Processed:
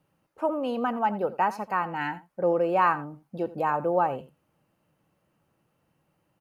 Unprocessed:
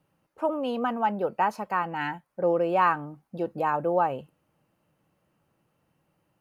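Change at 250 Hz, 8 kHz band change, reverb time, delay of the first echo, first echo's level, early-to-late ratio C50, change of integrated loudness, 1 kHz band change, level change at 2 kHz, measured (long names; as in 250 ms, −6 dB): 0.0 dB, can't be measured, no reverb audible, 85 ms, −17.0 dB, no reverb audible, 0.0 dB, 0.0 dB, 0.0 dB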